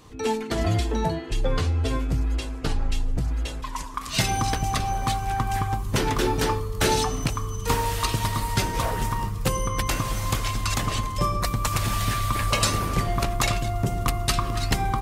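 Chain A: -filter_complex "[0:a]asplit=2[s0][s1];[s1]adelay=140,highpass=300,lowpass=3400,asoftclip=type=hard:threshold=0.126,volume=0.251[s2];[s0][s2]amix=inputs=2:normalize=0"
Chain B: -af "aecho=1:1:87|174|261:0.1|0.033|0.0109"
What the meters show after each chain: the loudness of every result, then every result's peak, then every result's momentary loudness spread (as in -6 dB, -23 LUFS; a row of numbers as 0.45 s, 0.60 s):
-25.5 LUFS, -25.5 LUFS; -9.0 dBFS, -9.0 dBFS; 5 LU, 5 LU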